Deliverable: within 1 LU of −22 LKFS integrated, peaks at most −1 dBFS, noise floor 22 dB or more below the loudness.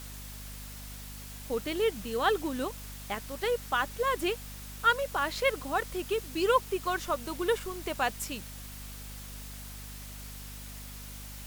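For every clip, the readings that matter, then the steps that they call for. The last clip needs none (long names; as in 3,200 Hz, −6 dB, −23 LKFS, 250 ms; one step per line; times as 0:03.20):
mains hum 50 Hz; hum harmonics up to 250 Hz; level of the hum −43 dBFS; background noise floor −44 dBFS; target noise floor −53 dBFS; integrated loudness −31.0 LKFS; sample peak −12.5 dBFS; target loudness −22.0 LKFS
→ hum removal 50 Hz, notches 5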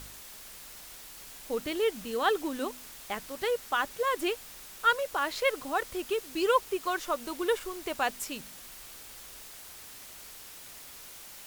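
mains hum none found; background noise floor −48 dBFS; target noise floor −53 dBFS
→ noise reduction from a noise print 6 dB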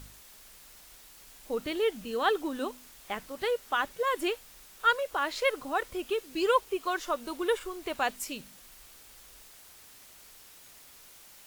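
background noise floor −54 dBFS; integrated loudness −31.0 LKFS; sample peak −12.5 dBFS; target loudness −22.0 LKFS
→ level +9 dB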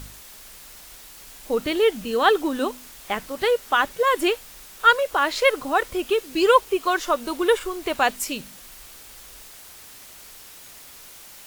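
integrated loudness −22.0 LKFS; sample peak −3.5 dBFS; background noise floor −45 dBFS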